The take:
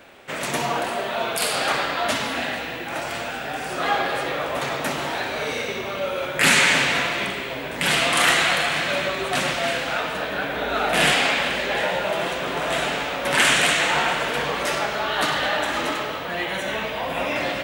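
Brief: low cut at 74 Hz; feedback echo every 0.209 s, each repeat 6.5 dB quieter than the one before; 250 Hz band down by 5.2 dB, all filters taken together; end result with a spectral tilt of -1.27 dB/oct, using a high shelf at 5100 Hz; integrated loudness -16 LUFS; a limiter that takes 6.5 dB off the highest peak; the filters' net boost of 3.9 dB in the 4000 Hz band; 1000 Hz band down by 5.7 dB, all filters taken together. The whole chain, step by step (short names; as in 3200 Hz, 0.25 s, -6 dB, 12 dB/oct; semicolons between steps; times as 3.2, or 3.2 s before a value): HPF 74 Hz; bell 250 Hz -6.5 dB; bell 1000 Hz -8 dB; bell 4000 Hz +7 dB; high shelf 5100 Hz -3 dB; limiter -10.5 dBFS; feedback echo 0.209 s, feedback 47%, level -6.5 dB; gain +6 dB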